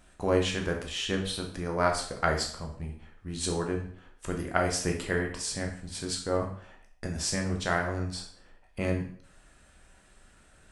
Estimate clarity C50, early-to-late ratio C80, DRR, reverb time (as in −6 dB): 7.0 dB, 11.0 dB, 1.5 dB, 0.55 s